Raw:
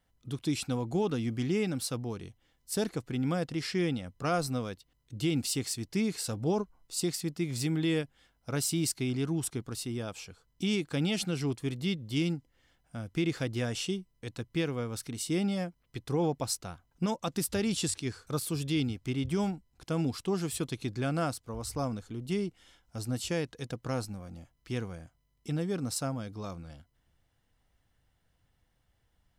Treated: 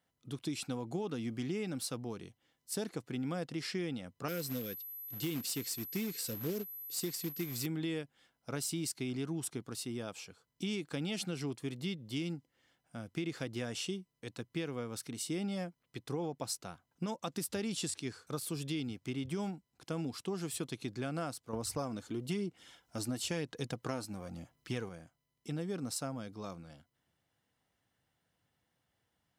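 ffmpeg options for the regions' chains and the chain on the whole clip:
ffmpeg -i in.wav -filter_complex "[0:a]asettb=1/sr,asplit=3[link_01][link_02][link_03];[link_01]atrim=end=4.284[link_04];[link_02]atrim=start=4.28:end=7.66,asetpts=PTS-STARTPTS,afade=type=in:duration=0.004:curve=qsin,afade=type=out:start_time=3.376:duration=0.004:curve=qsin,asuperstop=centerf=920:order=8:qfactor=1,acrusher=bits=3:mode=log:mix=0:aa=0.000001,aeval=exprs='val(0)+0.01*sin(2*PI*12000*n/s)':channel_layout=same[link_05];[link_03]atrim=start=7.656[link_06];[link_04][link_05]acrossfade=duration=0.004:curve1=hsin:curve2=qsin[link_07];[link_07][link_06]acrossfade=duration=0.004:curve1=qsin:curve2=hsin,asettb=1/sr,asplit=3[link_08][link_09][link_10];[link_08]atrim=end=21.534[link_11];[link_09]atrim=start=21.53:end=24.89,asetpts=PTS-STARTPTS,afade=type=in:duration=0.004:curve=qsin,afade=type=out:start_time=3.356:duration=0.004:curve=qsin,acontrast=35,aphaser=in_gain=1:out_gain=1:delay=3.4:decay=0.35:speed=1:type=sinusoidal[link_12];[link_10]atrim=start=24.886[link_13];[link_11][link_12]acrossfade=duration=0.004:curve1=hsin:curve2=qsin[link_14];[link_14][link_13]acrossfade=duration=0.004:curve1=qsin:curve2=hsin,highpass=140,acompressor=threshold=-30dB:ratio=6,volume=-3dB" out.wav

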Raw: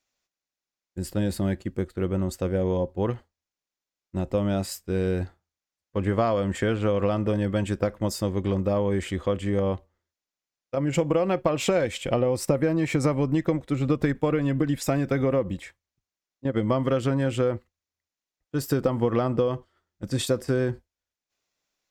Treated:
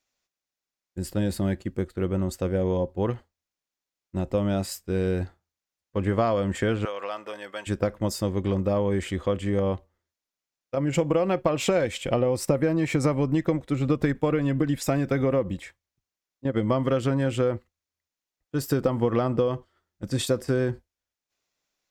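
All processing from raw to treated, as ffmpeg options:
ffmpeg -i in.wav -filter_complex "[0:a]asettb=1/sr,asplit=3[link_01][link_02][link_03];[link_01]atrim=end=6.854[link_04];[link_02]atrim=start=6.85:end=7.67,asetpts=PTS-STARTPTS,afade=type=in:duration=0.004:curve=qsin,afade=type=out:start_time=0.816:duration=0.004:curve=qsin,highpass=850,agate=range=-33dB:threshold=-47dB:ratio=3:release=100:detection=peak[link_05];[link_03]atrim=start=7.666[link_06];[link_04][link_05]acrossfade=duration=0.004:curve1=hsin:curve2=qsin[link_07];[link_07][link_06]acrossfade=duration=0.004:curve1=qsin:curve2=hsin" out.wav

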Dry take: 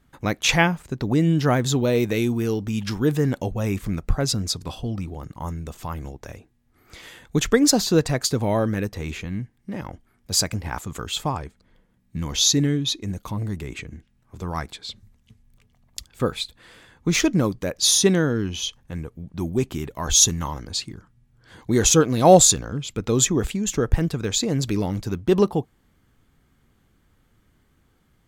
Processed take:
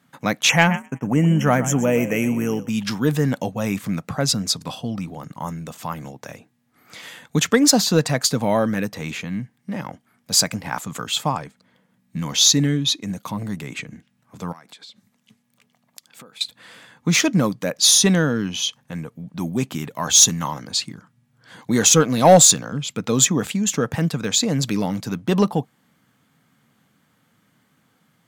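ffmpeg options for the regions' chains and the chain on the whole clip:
ffmpeg -i in.wav -filter_complex "[0:a]asettb=1/sr,asplit=3[link_01][link_02][link_03];[link_01]atrim=end=0.494[link_04];[link_02]atrim=start=0.49:end=2.69,asetpts=PTS-STARTPTS,afade=type=in:duration=0.004:curve=qsin,afade=type=out:start_time=2.196:duration=0.004:curve=qsin,asplit=4[link_05][link_06][link_07][link_08];[link_06]adelay=124,afreqshift=44,volume=-14dB[link_09];[link_07]adelay=248,afreqshift=88,volume=-23.4dB[link_10];[link_08]adelay=372,afreqshift=132,volume=-32.7dB[link_11];[link_05][link_09][link_10][link_11]amix=inputs=4:normalize=0,atrim=end_sample=97020,agate=range=-33dB:threshold=-26dB:ratio=3:release=100:detection=peak,asuperstop=centerf=4200:order=12:qfactor=1.8[link_12];[link_03]atrim=start=2.686[link_13];[link_04][link_12]acrossfade=duration=0.004:curve1=hsin:curve2=qsin[link_14];[link_14][link_13]acrossfade=duration=0.004:curve1=qsin:curve2=hsin,asettb=1/sr,asplit=3[link_15][link_16][link_17];[link_15]atrim=end=14.524[link_18];[link_16]atrim=start=14.52:end=16.41,asetpts=PTS-STARTPTS,afade=type=in:duration=0.004:curve=qsin,afade=type=out:start_time=1.886:duration=0.004:curve=qsin,highpass=190,acompressor=threshold=-43dB:ratio=12:attack=3.2:release=140:knee=1:detection=peak[link_19];[link_17]atrim=start=16.406[link_20];[link_18][link_19]acrossfade=duration=0.004:curve1=hsin:curve2=qsin[link_21];[link_21][link_20]acrossfade=duration=0.004:curve1=qsin:curve2=hsin,highpass=frequency=140:width=0.5412,highpass=frequency=140:width=1.3066,equalizer=frequency=370:width=3.2:gain=-10.5,acontrast=44,volume=-1dB" out.wav

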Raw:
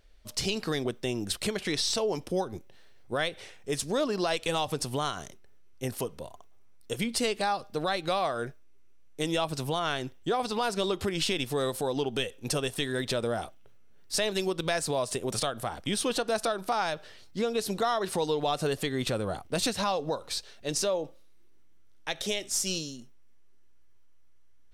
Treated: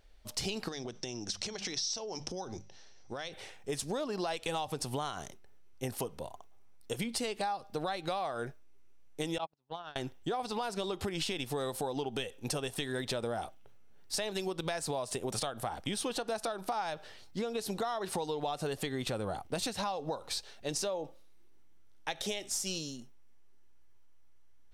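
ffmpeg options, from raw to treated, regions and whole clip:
ffmpeg -i in.wav -filter_complex "[0:a]asettb=1/sr,asplit=3[link_01][link_02][link_03];[link_01]atrim=end=0.684[link_04];[link_02]atrim=start=0.68:end=3.33,asetpts=PTS-STARTPTS,afade=type=in:duration=0.004:curve=qsin,afade=type=out:start_time=2.646:duration=0.004:curve=qsin,bandreject=frequency=50:width_type=h:width=6,bandreject=frequency=100:width_type=h:width=6,bandreject=frequency=150:width_type=h:width=6,bandreject=frequency=200:width_type=h:width=6,acompressor=threshold=-35dB:ratio=12:attack=3.2:release=140:knee=1:detection=peak,lowpass=frequency=5800:width_type=q:width=6.7[link_05];[link_03]atrim=start=3.326[link_06];[link_04][link_05]acrossfade=duration=0.004:curve1=hsin:curve2=qsin[link_07];[link_07][link_06]acrossfade=duration=0.004:curve1=qsin:curve2=hsin,asettb=1/sr,asplit=3[link_08][link_09][link_10];[link_08]atrim=end=9.384[link_11];[link_09]atrim=start=9.38:end=9.96,asetpts=PTS-STARTPTS,afade=type=in:duration=0.004:curve=qsin,afade=type=out:start_time=0.576:duration=0.004:curve=qsin,highpass=100,lowpass=4200,agate=range=-47dB:threshold=-28dB:ratio=16:release=100:detection=peak[link_12];[link_10]atrim=start=9.956[link_13];[link_11][link_12]acrossfade=duration=0.004:curve1=hsin:curve2=qsin[link_14];[link_14][link_13]acrossfade=duration=0.004:curve1=qsin:curve2=hsin,equalizer=frequency=820:width_type=o:width=0.37:gain=6,acompressor=threshold=-30dB:ratio=6,volume=-1.5dB" out.wav

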